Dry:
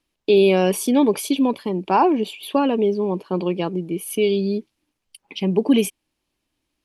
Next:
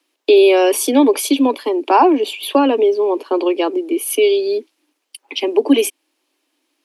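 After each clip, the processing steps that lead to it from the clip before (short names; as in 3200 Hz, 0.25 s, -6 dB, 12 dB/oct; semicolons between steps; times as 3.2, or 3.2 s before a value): steep high-pass 260 Hz 96 dB/oct; in parallel at 0 dB: compressor, threshold -24 dBFS, peak gain reduction 12 dB; on the sum: gain +3 dB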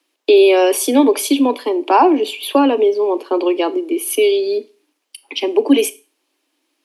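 Schroeder reverb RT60 0.33 s, combs from 25 ms, DRR 15.5 dB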